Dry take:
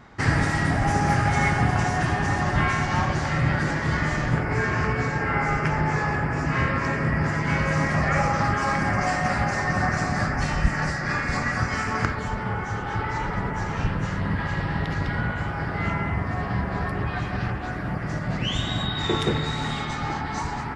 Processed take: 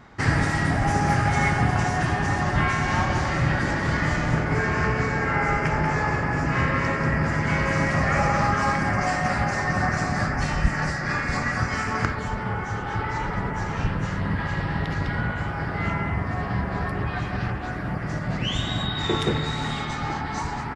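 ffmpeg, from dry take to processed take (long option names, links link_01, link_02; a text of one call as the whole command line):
ffmpeg -i in.wav -filter_complex "[0:a]asplit=3[link_01][link_02][link_03];[link_01]afade=type=out:start_time=2.84:duration=0.02[link_04];[link_02]aecho=1:1:188:0.501,afade=type=in:start_time=2.84:duration=0.02,afade=type=out:start_time=8.7:duration=0.02[link_05];[link_03]afade=type=in:start_time=8.7:duration=0.02[link_06];[link_04][link_05][link_06]amix=inputs=3:normalize=0" out.wav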